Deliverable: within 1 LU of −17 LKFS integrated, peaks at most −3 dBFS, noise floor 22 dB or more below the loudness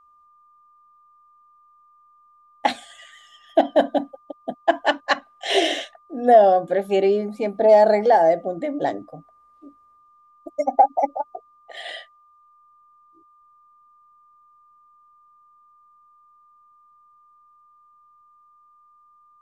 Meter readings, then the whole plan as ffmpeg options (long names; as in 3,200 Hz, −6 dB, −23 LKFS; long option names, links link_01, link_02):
interfering tone 1,200 Hz; level of the tone −53 dBFS; integrated loudness −20.0 LKFS; sample peak −3.5 dBFS; target loudness −17.0 LKFS
→ -af "bandreject=frequency=1200:width=30"
-af "volume=3dB,alimiter=limit=-3dB:level=0:latency=1"